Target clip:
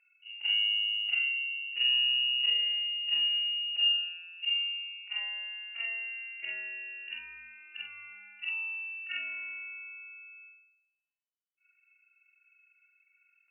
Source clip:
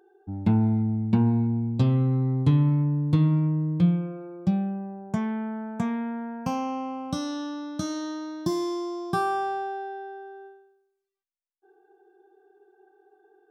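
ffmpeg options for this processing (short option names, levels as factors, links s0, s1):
-af "afftfilt=real='re':imag='-im':win_size=4096:overlap=0.75,aeval=exprs='0.188*(cos(1*acos(clip(val(0)/0.188,-1,1)))-cos(1*PI/2))+0.00188*(cos(6*acos(clip(val(0)/0.188,-1,1)))-cos(6*PI/2))':c=same,lowpass=f=2600:t=q:w=0.5098,lowpass=f=2600:t=q:w=0.6013,lowpass=f=2600:t=q:w=0.9,lowpass=f=2600:t=q:w=2.563,afreqshift=-3000,volume=0.596"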